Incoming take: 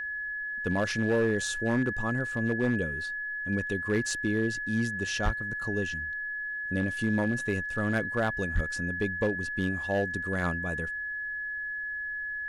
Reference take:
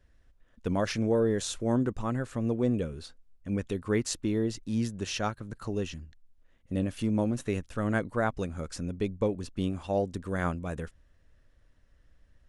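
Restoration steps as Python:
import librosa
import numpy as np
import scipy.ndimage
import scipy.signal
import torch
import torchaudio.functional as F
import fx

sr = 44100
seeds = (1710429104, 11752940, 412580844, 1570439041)

y = fx.fix_declip(x, sr, threshold_db=-20.0)
y = fx.notch(y, sr, hz=1700.0, q=30.0)
y = fx.fix_deplosive(y, sr, at_s=(5.24, 8.54))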